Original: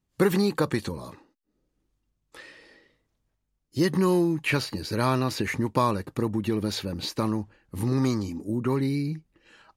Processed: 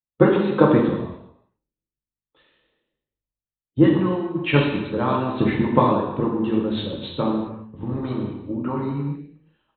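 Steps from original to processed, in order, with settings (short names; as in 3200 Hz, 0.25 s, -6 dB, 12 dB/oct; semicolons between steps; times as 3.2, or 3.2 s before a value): bell 2100 Hz -11.5 dB 1.1 oct; downsampling 8000 Hz; harmonic-percussive split harmonic -11 dB; non-linear reverb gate 0.44 s falling, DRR -2.5 dB; three-band expander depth 70%; gain +6 dB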